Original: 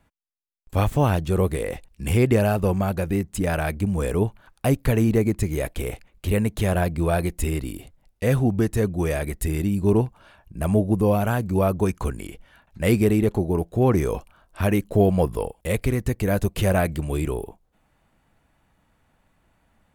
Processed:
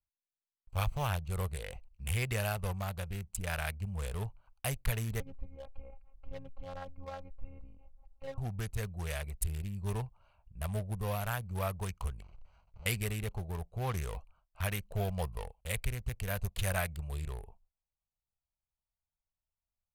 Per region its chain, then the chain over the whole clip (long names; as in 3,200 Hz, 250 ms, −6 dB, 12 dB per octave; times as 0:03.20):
0:05.20–0:08.38: low-pass filter 1,100 Hz + upward compression, threshold −29 dBFS + phases set to zero 270 Hz
0:12.22–0:12.86: each half-wave held at its own peak + downward compressor 4 to 1, threshold −40 dBFS + linearly interpolated sample-rate reduction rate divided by 4×
whole clip: adaptive Wiener filter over 25 samples; noise gate with hold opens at −48 dBFS; guitar amp tone stack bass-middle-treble 10-0-10